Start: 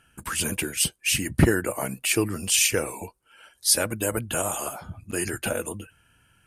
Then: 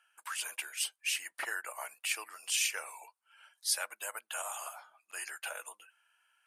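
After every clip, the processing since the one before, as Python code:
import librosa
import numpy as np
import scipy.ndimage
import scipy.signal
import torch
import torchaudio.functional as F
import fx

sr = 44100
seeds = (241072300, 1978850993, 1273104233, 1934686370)

y = scipy.signal.sosfilt(scipy.signal.butter(4, 790.0, 'highpass', fs=sr, output='sos'), x)
y = fx.high_shelf(y, sr, hz=6300.0, db=-6.0)
y = y * 10.0 ** (-7.5 / 20.0)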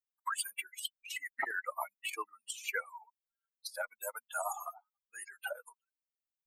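y = fx.bin_expand(x, sr, power=3.0)
y = fx.over_compress(y, sr, threshold_db=-44.0, ratio=-0.5)
y = y * 10.0 ** (8.0 / 20.0)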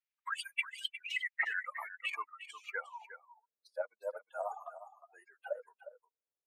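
y = fx.filter_sweep_bandpass(x, sr, from_hz=2300.0, to_hz=480.0, start_s=1.93, end_s=3.27, q=2.6)
y = y + 10.0 ** (-12.5 / 20.0) * np.pad(y, (int(358 * sr / 1000.0), 0))[:len(y)]
y = y * 10.0 ** (7.5 / 20.0)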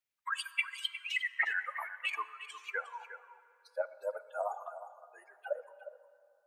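y = fx.rev_plate(x, sr, seeds[0], rt60_s=3.0, hf_ratio=0.6, predelay_ms=0, drr_db=14.5)
y = y * 10.0 ** (2.5 / 20.0)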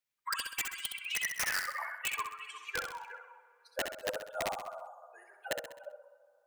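y = (np.mod(10.0 ** (26.5 / 20.0) * x + 1.0, 2.0) - 1.0) / 10.0 ** (26.5 / 20.0)
y = fx.echo_feedback(y, sr, ms=65, feedback_pct=47, wet_db=-6.5)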